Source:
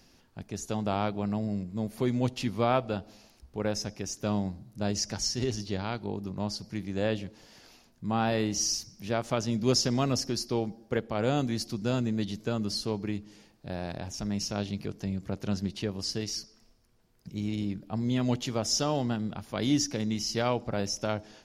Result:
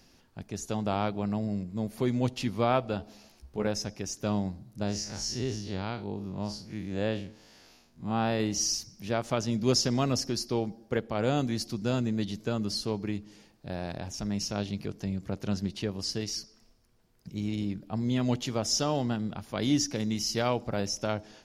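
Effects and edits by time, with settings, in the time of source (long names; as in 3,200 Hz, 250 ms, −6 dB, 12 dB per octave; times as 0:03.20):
0:02.98–0:03.67: double-tracking delay 14 ms −5 dB
0:04.83–0:08.40: spectrum smeared in time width 88 ms
0:19.95–0:20.80: high-shelf EQ 10,000 Hz +8 dB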